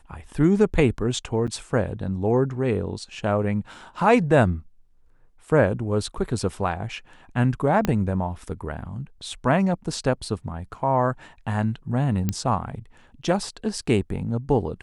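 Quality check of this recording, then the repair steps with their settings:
0:01.47–0:01.48: drop-out 7.2 ms
0:07.85: click −9 dBFS
0:12.29: click −10 dBFS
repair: click removal
repair the gap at 0:01.47, 7.2 ms

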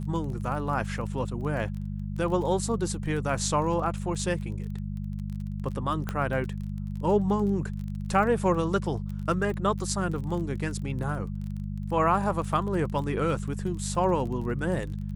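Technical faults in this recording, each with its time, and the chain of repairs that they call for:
surface crackle 21 per second −35 dBFS
mains hum 50 Hz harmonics 4 −33 dBFS
0:06.09: click −16 dBFS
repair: click removal
hum removal 50 Hz, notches 4

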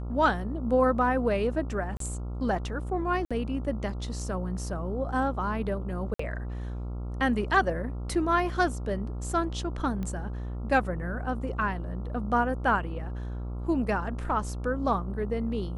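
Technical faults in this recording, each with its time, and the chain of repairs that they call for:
mains buzz 60 Hz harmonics 23 −34 dBFS
0:01.97–0:02.00: drop-out 33 ms
0:03.25–0:03.31: drop-out 56 ms
0:06.14–0:06.19: drop-out 54 ms
0:10.03: click −23 dBFS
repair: click removal
hum removal 60 Hz, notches 23
repair the gap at 0:01.97, 33 ms
repair the gap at 0:03.25, 56 ms
repair the gap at 0:06.14, 54 ms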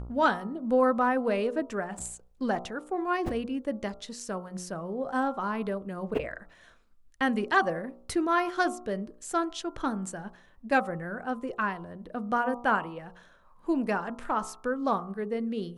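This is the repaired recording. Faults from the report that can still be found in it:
none of them is left

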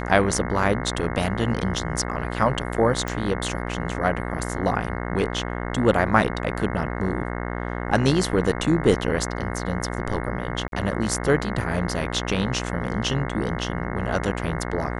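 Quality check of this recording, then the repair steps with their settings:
mains buzz 60 Hz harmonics 36 −29 dBFS
0:03.08: click
0:10.68–0:10.72: drop-out 42 ms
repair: click removal
hum removal 60 Hz, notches 36
repair the gap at 0:10.68, 42 ms

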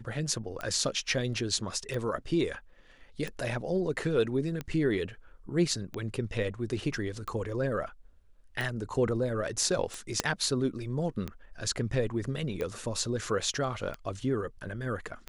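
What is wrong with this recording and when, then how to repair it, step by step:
scratch tick 45 rpm −21 dBFS
0:10.20: click −10 dBFS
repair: click removal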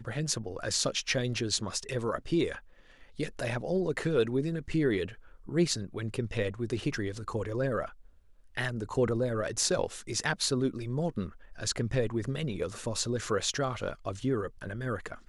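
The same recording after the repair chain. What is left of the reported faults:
0:10.20: click

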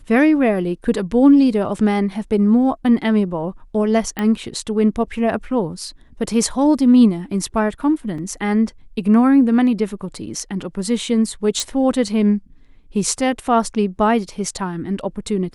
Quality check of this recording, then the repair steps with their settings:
0:04.19: click −10 dBFS
0:08.18: drop-out 3.6 ms
0:11.60: click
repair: click removal
repair the gap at 0:08.18, 3.6 ms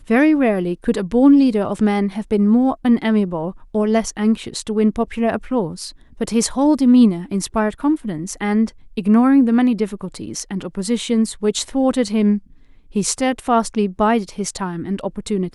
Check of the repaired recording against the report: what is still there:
0:11.60: click

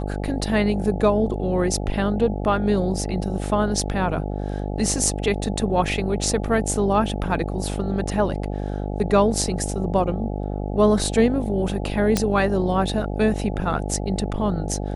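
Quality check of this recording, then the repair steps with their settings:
mains buzz 50 Hz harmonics 17 −27 dBFS
0:12.17: click −5 dBFS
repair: click removal
hum removal 50 Hz, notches 17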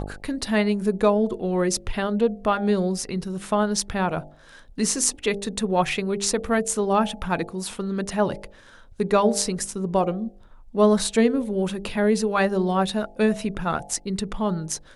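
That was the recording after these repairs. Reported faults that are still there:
none of them is left

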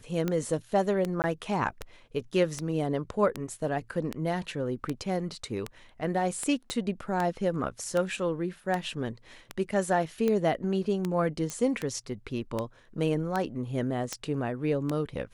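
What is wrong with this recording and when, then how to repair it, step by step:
scratch tick 78 rpm −16 dBFS
0:01.22–0:01.24: drop-out 19 ms
0:06.70: click −18 dBFS
0:11.50: click −19 dBFS
0:14.13: click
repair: click removal
repair the gap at 0:01.22, 19 ms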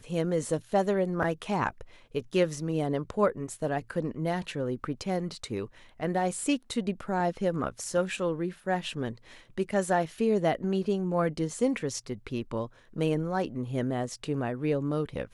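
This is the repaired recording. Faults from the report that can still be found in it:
0:06.70: click

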